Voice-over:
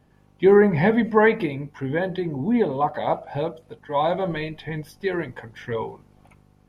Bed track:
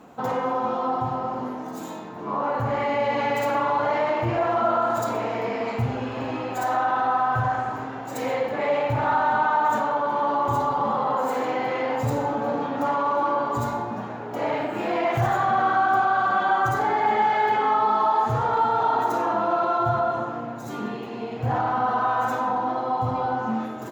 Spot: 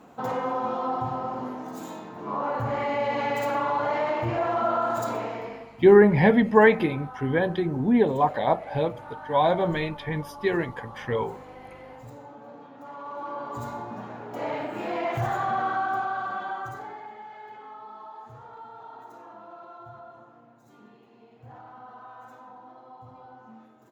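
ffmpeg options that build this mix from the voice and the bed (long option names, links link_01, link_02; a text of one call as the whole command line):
ffmpeg -i stem1.wav -i stem2.wav -filter_complex "[0:a]adelay=5400,volume=0.5dB[link_01];[1:a]volume=11.5dB,afade=type=out:start_time=5.14:duration=0.55:silence=0.149624,afade=type=in:start_time=12.84:duration=1.33:silence=0.188365,afade=type=out:start_time=15.52:duration=1.61:silence=0.133352[link_02];[link_01][link_02]amix=inputs=2:normalize=0" out.wav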